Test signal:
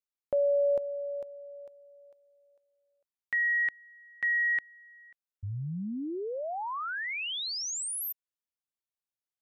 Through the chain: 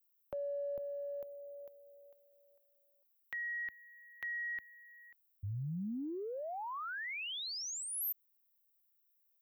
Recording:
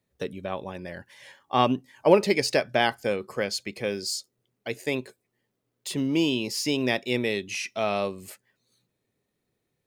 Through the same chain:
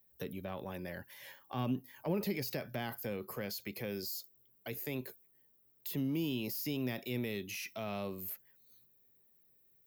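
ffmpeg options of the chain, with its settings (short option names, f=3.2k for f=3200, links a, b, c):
-filter_complex "[0:a]aexciter=amount=12.4:drive=7.9:freq=12k,acrossover=split=220[a][b];[b]acompressor=threshold=-36dB:ratio=4:attack=1.7:release=34:knee=2.83:detection=peak[c];[a][c]amix=inputs=2:normalize=0,volume=-4dB"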